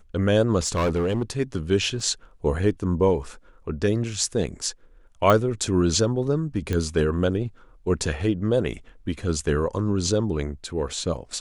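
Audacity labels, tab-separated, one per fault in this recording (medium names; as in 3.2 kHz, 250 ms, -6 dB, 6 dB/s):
0.660000	1.230000	clipped -19 dBFS
2.000000	2.000000	dropout 3.7 ms
5.300000	5.300000	pop -8 dBFS
6.730000	6.730000	pop -13 dBFS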